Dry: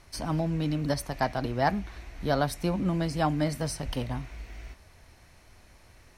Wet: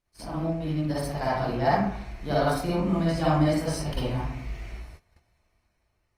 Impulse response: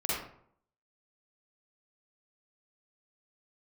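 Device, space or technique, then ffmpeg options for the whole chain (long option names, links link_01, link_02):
speakerphone in a meeting room: -filter_complex "[1:a]atrim=start_sample=2205[link_01];[0:a][link_01]afir=irnorm=-1:irlink=0,dynaudnorm=framelen=270:gausssize=7:maxgain=6.5dB,agate=range=-18dB:threshold=-36dB:ratio=16:detection=peak,volume=-8.5dB" -ar 48000 -c:a libopus -b:a 32k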